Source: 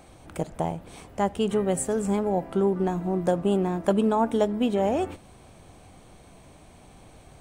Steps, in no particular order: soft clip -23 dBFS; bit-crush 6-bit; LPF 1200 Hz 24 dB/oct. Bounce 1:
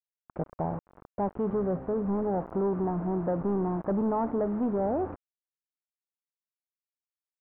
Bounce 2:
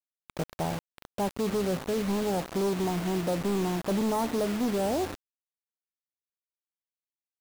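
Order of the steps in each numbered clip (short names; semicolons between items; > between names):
bit-crush > soft clip > LPF; soft clip > LPF > bit-crush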